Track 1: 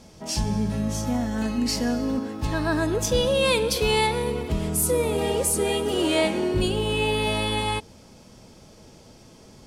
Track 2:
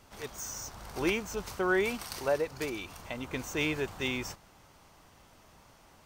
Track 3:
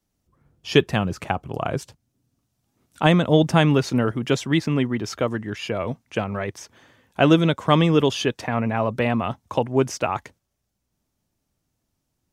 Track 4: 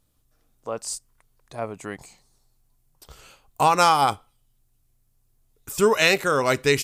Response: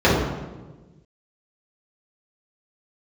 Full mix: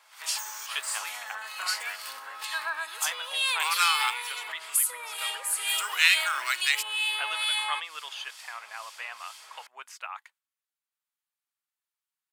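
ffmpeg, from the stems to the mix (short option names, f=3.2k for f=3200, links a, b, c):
-filter_complex "[0:a]acrossover=split=2300[a][b];[a]aeval=exprs='val(0)*(1-0.7/2+0.7/2*cos(2*PI*2.2*n/s))':c=same[c];[b]aeval=exprs='val(0)*(1-0.7/2-0.7/2*cos(2*PI*2.2*n/s))':c=same[d];[c][d]amix=inputs=2:normalize=0,acompressor=threshold=-35dB:ratio=6,volume=2.5dB[e];[1:a]acompressor=threshold=-42dB:ratio=2.5,volume=-1.5dB[f];[2:a]volume=-19.5dB[g];[3:a]highpass=1.5k,acrusher=bits=6:mix=0:aa=0.5,volume=-10.5dB,asplit=2[h][i];[i]apad=whole_len=267213[j];[f][j]sidechaingate=range=-9dB:threshold=-58dB:ratio=16:detection=peak[k];[e][k][g][h]amix=inputs=4:normalize=0,highpass=f=1.1k:w=0.5412,highpass=f=1.1k:w=1.3066,dynaudnorm=f=150:g=3:m=11dB,equalizer=f=5.8k:t=o:w=0.46:g=-9"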